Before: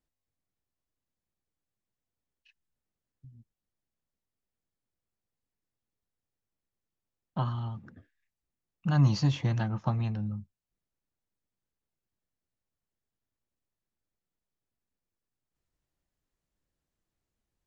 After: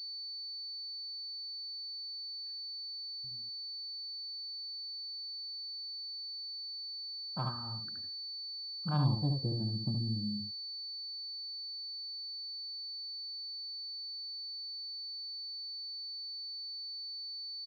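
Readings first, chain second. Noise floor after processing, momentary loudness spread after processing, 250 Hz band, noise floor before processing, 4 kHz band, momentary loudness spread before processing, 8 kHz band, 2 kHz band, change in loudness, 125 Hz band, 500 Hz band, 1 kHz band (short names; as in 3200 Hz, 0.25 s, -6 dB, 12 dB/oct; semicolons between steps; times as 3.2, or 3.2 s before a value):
-43 dBFS, 5 LU, -4.5 dB, under -85 dBFS, +16.0 dB, 15 LU, n/a, -11.0 dB, -8.5 dB, -6.0 dB, -5.0 dB, -4.5 dB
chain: low-pass sweep 1700 Hz -> 280 Hz, 8.71–9.69; echo 72 ms -4.5 dB; pulse-width modulation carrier 4500 Hz; gain -8 dB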